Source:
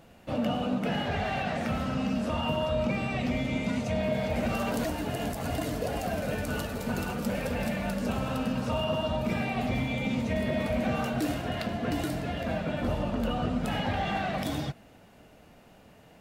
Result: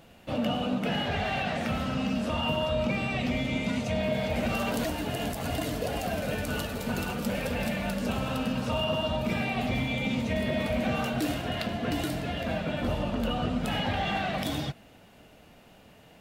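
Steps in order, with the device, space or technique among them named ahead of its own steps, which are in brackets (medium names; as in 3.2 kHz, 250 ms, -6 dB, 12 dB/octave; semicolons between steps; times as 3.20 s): presence and air boost (peaking EQ 3.2 kHz +4.5 dB 1 oct; treble shelf 10 kHz +3.5 dB)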